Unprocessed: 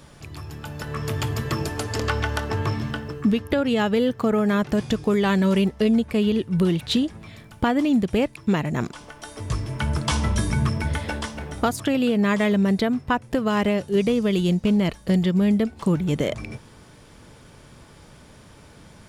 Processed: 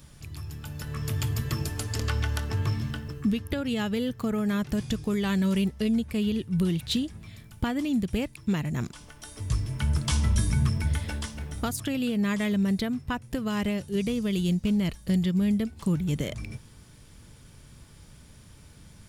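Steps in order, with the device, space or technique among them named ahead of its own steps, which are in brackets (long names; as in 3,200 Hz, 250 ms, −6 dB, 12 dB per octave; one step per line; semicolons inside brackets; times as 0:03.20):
smiley-face EQ (low-shelf EQ 160 Hz +6 dB; parametric band 640 Hz −8 dB 2.8 octaves; high-shelf EQ 9,500 Hz +8.5 dB)
level −4 dB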